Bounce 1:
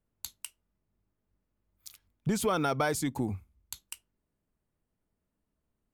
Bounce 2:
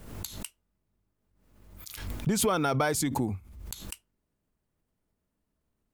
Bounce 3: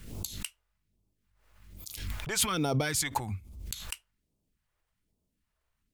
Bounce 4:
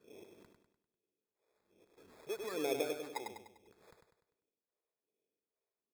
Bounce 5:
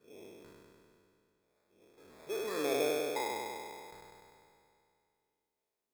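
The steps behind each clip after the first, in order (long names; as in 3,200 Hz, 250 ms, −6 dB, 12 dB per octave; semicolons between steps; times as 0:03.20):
background raised ahead of every attack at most 53 dB per second; level +1.5 dB
parametric band 1,800 Hz +5.5 dB 2.4 octaves; all-pass phaser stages 2, 1.2 Hz, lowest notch 200–1,700 Hz
four-pole ladder band-pass 480 Hz, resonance 60%; decimation without filtering 15×; on a send: repeating echo 99 ms, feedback 45%, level −5.5 dB; on the sum: level +3.5 dB
peak hold with a decay on every bin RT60 2.45 s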